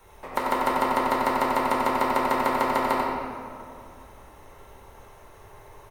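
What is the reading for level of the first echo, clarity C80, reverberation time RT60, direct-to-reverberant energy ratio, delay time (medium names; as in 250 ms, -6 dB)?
-5.0 dB, -0.5 dB, 2.2 s, -6.0 dB, 91 ms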